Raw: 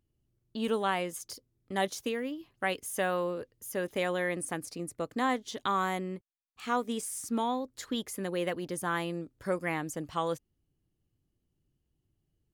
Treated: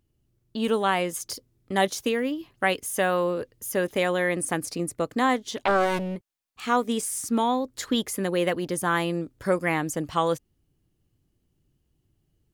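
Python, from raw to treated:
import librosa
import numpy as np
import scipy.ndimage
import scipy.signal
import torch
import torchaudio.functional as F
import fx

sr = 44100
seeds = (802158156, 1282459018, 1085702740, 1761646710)

p1 = fx.rider(x, sr, range_db=3, speed_s=0.5)
p2 = x + (p1 * 10.0 ** (2.5 / 20.0))
y = fx.doppler_dist(p2, sr, depth_ms=0.74, at=(5.57, 6.16))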